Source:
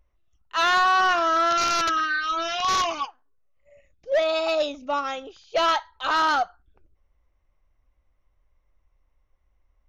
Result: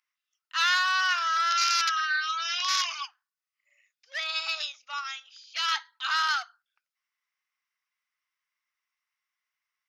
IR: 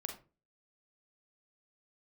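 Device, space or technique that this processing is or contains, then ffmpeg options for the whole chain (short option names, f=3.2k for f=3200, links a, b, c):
headphones lying on a table: -filter_complex "[0:a]highpass=f=1.4k:w=0.5412,highpass=f=1.4k:w=1.3066,equalizer=f=5k:t=o:w=0.2:g=8,asettb=1/sr,asplit=3[a][b][c];[a]atrim=end=5.044[d];[b]atrim=start=5.04:end=5.72,asetpts=PTS-STARTPTS,afade=t=in:d=0.004:c=qsin,afade=t=out:st=0.676:d=0.004:c=qsin,highpass=f=1.4k:p=1[e];[c]atrim=start=5.716[f];[d][e]acrossfade=d=0.004:c1=hsin:c2=qsin[g];[g][f]acrossfade=d=0.004:c1=qsin:c2=hsin"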